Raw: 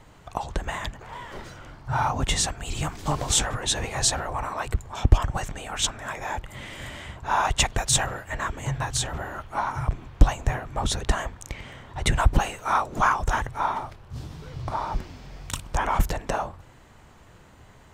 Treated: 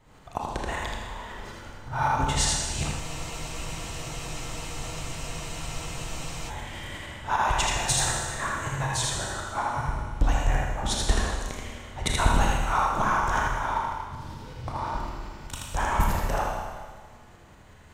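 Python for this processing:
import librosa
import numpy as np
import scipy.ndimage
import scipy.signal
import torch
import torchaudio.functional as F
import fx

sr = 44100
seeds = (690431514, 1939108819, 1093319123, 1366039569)

y = fx.tremolo_shape(x, sr, shape='saw_up', hz=5.3, depth_pct=70)
y = y + 10.0 ** (-3.0 / 20.0) * np.pad(y, (int(80 * sr / 1000.0), 0))[:len(y)]
y = fx.rev_schroeder(y, sr, rt60_s=1.6, comb_ms=26, drr_db=0.0)
y = fx.spec_freeze(y, sr, seeds[0], at_s=3.03, hold_s=3.46)
y = y * 10.0 ** (-1.5 / 20.0)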